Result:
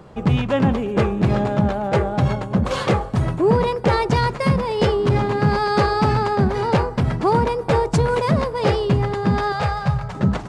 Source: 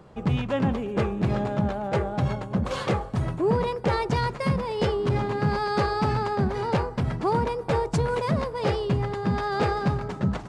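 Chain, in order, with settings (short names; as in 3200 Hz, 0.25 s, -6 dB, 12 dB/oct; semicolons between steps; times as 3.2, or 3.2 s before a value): 9.52–10.15 EQ curve 150 Hz 0 dB, 310 Hz -27 dB, 560 Hz -3 dB; gain +6.5 dB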